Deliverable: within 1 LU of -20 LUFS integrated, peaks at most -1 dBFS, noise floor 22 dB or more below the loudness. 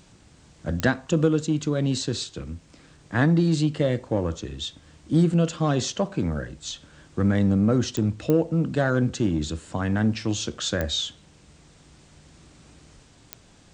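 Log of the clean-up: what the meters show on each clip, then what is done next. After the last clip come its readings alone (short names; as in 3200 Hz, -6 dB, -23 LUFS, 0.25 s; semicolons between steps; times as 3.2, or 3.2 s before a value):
clicks 5; loudness -24.5 LUFS; peak -7.0 dBFS; loudness target -20.0 LUFS
-> de-click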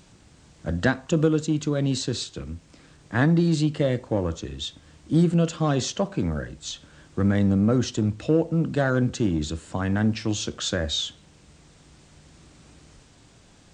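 clicks 0; loudness -24.5 LUFS; peak -7.0 dBFS; loudness target -20.0 LUFS
-> gain +4.5 dB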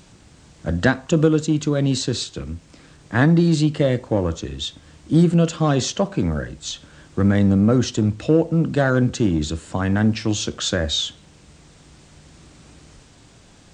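loudness -20.0 LUFS; peak -2.5 dBFS; noise floor -50 dBFS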